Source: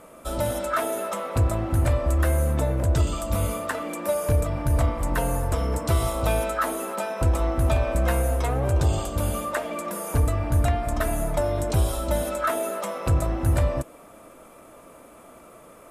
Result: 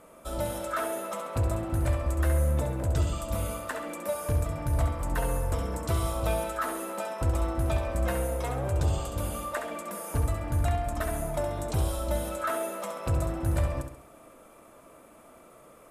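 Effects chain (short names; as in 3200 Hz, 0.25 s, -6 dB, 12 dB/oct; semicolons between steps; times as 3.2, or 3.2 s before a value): flutter echo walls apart 11.5 m, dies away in 0.54 s; gain -6 dB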